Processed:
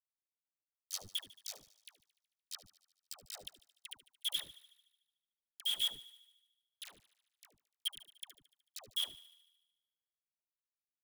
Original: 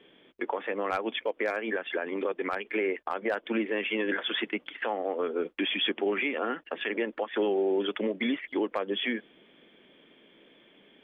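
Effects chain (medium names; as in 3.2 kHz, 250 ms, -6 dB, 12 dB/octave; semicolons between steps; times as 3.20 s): inverse Chebyshev band-stop 110–2600 Hz, stop band 40 dB; reverb removal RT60 1.8 s; bass shelf 250 Hz -11 dB; comb 1.6 ms, depth 82%; in parallel at +2 dB: level held to a coarse grid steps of 11 dB; on the sum: word length cut 8-bit, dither none; phase dispersion lows, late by 118 ms, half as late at 700 Hz; on a send: thinning echo 74 ms, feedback 64%, high-pass 570 Hz, level -17.5 dB; on the sum: trim +11.5 dB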